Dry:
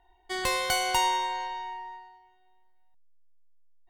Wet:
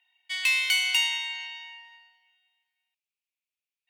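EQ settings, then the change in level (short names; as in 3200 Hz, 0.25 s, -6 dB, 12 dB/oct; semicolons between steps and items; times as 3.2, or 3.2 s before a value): resonant high-pass 2500 Hz, resonance Q 6.6; -1.5 dB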